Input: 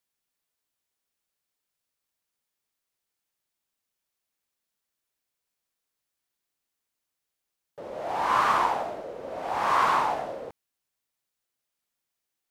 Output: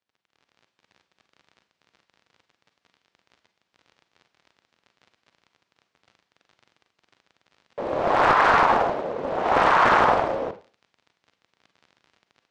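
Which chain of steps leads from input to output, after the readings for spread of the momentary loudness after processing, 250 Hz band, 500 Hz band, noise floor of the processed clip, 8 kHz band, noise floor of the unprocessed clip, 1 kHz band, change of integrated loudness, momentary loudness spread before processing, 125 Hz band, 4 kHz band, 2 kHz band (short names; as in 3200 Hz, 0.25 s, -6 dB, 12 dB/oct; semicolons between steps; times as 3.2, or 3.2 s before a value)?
13 LU, +10.5 dB, +10.0 dB, -79 dBFS, n/a, -85 dBFS, +5.5 dB, +5.5 dB, 18 LU, +11.0 dB, +5.5 dB, +9.5 dB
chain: crackle 39/s -48 dBFS; HPF 84 Hz 12 dB/oct; AGC gain up to 11.5 dB; Bessel low-pass 3800 Hz, order 4; Schroeder reverb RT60 0.34 s, combs from 33 ms, DRR 9.5 dB; maximiser +8 dB; Doppler distortion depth 0.65 ms; gain -8 dB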